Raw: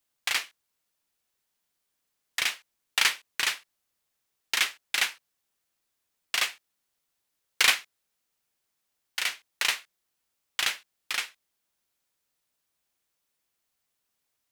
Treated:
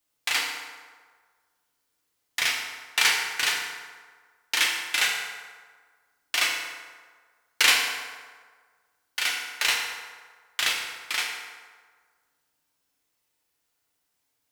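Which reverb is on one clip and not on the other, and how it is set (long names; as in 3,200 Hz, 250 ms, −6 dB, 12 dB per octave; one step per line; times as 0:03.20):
feedback delay network reverb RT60 1.6 s, low-frequency decay 0.8×, high-frequency decay 0.6×, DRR −2 dB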